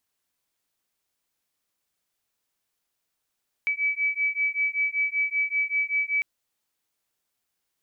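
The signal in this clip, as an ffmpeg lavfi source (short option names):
-f lavfi -i "aevalsrc='0.0501*(sin(2*PI*2290*t)+sin(2*PI*2295.2*t))':d=2.55:s=44100"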